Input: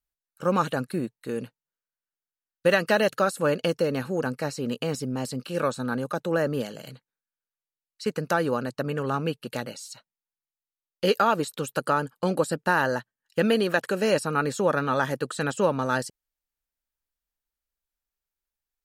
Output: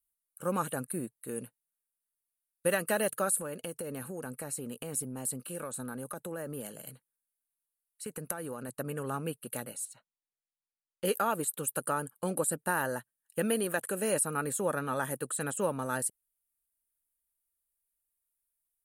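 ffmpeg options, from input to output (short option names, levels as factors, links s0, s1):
-filter_complex "[0:a]asettb=1/sr,asplit=3[s0][s1][s2];[s0]atrim=end=3.304[s3];[s1]atrim=start=3.3:end=8.69,asetpts=PTS-STARTPTS,afade=t=in:d=0.004:c=qsin,afade=t=out:st=5.386:d=0.004:c=qsin,acompressor=threshold=0.0447:ratio=5:attack=3.2:release=140:knee=1:detection=peak[s4];[s2]atrim=start=8.686[s5];[s3][s4]acrossfade=d=0.004:c1=hsin:c2=qsin[s6];[s6][s5]acrossfade=d=0.004:c1=qsin:c2=hsin,asettb=1/sr,asplit=3[s7][s8][s9];[s7]atrim=end=9.854[s10];[s8]atrim=start=9.85:end=11.05,asetpts=PTS-STARTPTS,afade=t=in:d=0.004:c=qsin,afade=t=out:st=1.196:d=0.004:c=qsin,adynamicsmooth=sensitivity=2.5:basefreq=4900[s11];[s9]atrim=start=11.046[s12];[s10][s11]acrossfade=d=0.004:c1=hsin:c2=qsin[s13];[s13][s12]acrossfade=d=0.004:c1=qsin:c2=hsin,highshelf=f=7200:t=q:w=3:g=13,volume=0.398"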